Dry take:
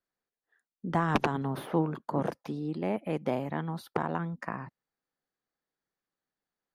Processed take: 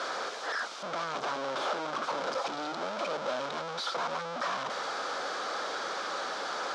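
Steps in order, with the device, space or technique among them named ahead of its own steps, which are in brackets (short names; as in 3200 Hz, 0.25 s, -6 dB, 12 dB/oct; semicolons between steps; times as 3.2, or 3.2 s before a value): home computer beeper (infinite clipping; speaker cabinet 550–5300 Hz, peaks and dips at 560 Hz +5 dB, 1300 Hz +6 dB, 1900 Hz -8 dB, 2700 Hz -7 dB, 4400 Hz -3 dB); gain +4.5 dB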